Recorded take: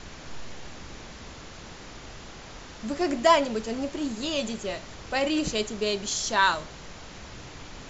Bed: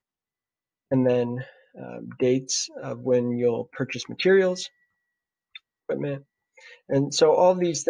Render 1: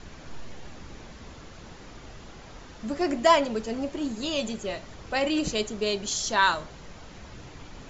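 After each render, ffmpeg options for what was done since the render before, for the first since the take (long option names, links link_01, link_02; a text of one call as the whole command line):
ffmpeg -i in.wav -af "afftdn=noise_reduction=6:noise_floor=-44" out.wav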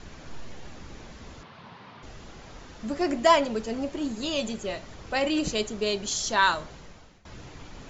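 ffmpeg -i in.wav -filter_complex "[0:a]asettb=1/sr,asplit=3[link_01][link_02][link_03];[link_01]atrim=end=1.434[link_04];[link_02]atrim=start=1.43:end=2.03,asetpts=PTS-STARTPTS,afade=type=in:duration=0.004:curve=qsin,afade=type=out:start_time=0.596:duration=0.004:curve=qsin,highpass=frequency=110:width=0.5412,highpass=frequency=110:width=1.3066,equalizer=frequency=320:width_type=q:width=4:gain=-10,equalizer=frequency=500:width_type=q:width=4:gain=-4,equalizer=frequency=1000:width_type=q:width=4:gain=8,lowpass=frequency=4200:width=0.5412,lowpass=frequency=4200:width=1.3066[link_05];[link_03]atrim=start=2.026[link_06];[link_04][link_05]acrossfade=duration=0.004:curve1=hsin:curve2=qsin[link_07];[link_07][link_06]acrossfade=duration=0.004:curve1=qsin:curve2=hsin,asplit=2[link_08][link_09];[link_08]atrim=end=7.25,asetpts=PTS-STARTPTS,afade=type=out:start_time=6.73:duration=0.52:silence=0.0891251[link_10];[link_09]atrim=start=7.25,asetpts=PTS-STARTPTS,afade=type=in:duration=0.004:curve=hsin:silence=0.0891251[link_11];[link_10][link_11]concat=n=2:v=0:a=1" out.wav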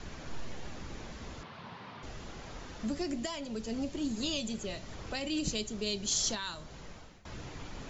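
ffmpeg -i in.wav -filter_complex "[0:a]alimiter=limit=-18dB:level=0:latency=1:release=498,acrossover=split=270|3000[link_01][link_02][link_03];[link_02]acompressor=threshold=-42dB:ratio=4[link_04];[link_01][link_04][link_03]amix=inputs=3:normalize=0" out.wav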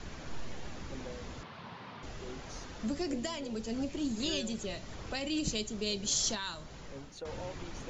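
ffmpeg -i in.wav -i bed.wav -filter_complex "[1:a]volume=-25.5dB[link_01];[0:a][link_01]amix=inputs=2:normalize=0" out.wav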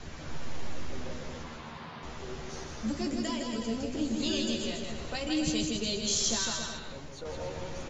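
ffmpeg -i in.wav -filter_complex "[0:a]asplit=2[link_01][link_02];[link_02]adelay=13,volume=-5dB[link_03];[link_01][link_03]amix=inputs=2:normalize=0,aecho=1:1:160|280|370|437.5|488.1:0.631|0.398|0.251|0.158|0.1" out.wav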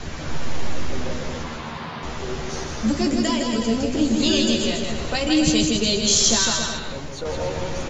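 ffmpeg -i in.wav -af "volume=11.5dB" out.wav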